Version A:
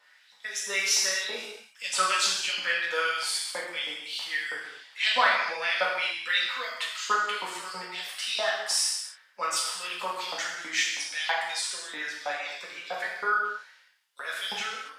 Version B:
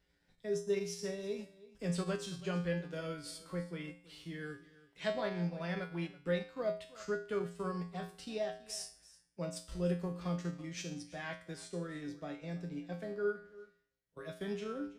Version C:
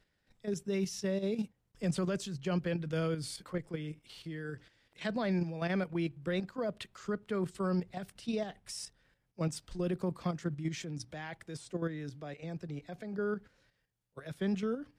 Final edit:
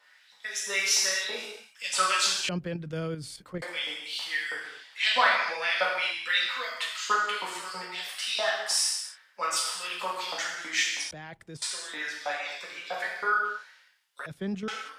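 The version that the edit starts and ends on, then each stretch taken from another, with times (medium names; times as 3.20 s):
A
2.49–3.62 s: from C
11.11–11.62 s: from C
14.26–14.68 s: from C
not used: B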